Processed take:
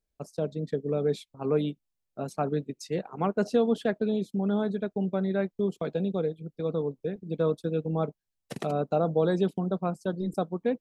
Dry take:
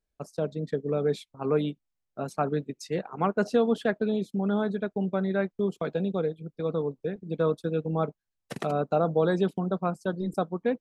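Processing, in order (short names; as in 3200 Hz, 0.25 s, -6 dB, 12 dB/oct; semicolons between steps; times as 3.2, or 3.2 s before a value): bell 1400 Hz -5 dB 1.4 oct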